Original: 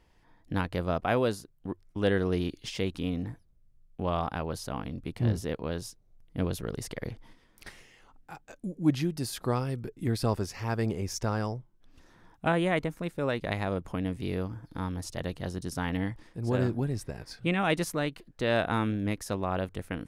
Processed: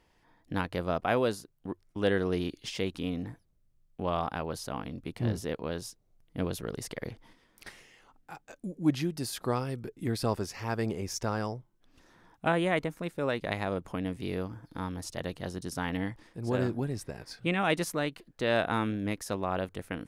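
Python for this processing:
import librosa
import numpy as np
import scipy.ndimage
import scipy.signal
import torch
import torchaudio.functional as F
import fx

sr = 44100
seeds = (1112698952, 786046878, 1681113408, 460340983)

y = fx.low_shelf(x, sr, hz=120.0, db=-8.0)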